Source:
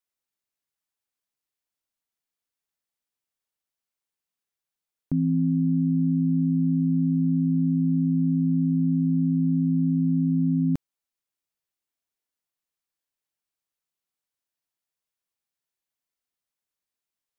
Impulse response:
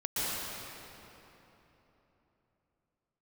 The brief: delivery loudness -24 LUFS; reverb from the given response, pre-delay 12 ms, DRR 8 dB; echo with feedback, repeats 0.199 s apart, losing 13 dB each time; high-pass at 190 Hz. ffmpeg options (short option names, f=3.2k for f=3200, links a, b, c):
-filter_complex "[0:a]highpass=190,aecho=1:1:199|398|597:0.224|0.0493|0.0108,asplit=2[a][b];[1:a]atrim=start_sample=2205,adelay=12[c];[b][c]afir=irnorm=-1:irlink=0,volume=-16.5dB[d];[a][d]amix=inputs=2:normalize=0,volume=-3dB"